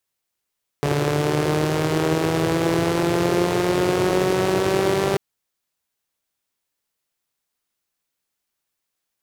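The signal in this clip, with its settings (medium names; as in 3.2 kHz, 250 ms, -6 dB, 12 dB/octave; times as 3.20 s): four-cylinder engine model, changing speed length 4.34 s, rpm 4300, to 5900, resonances 140/360 Hz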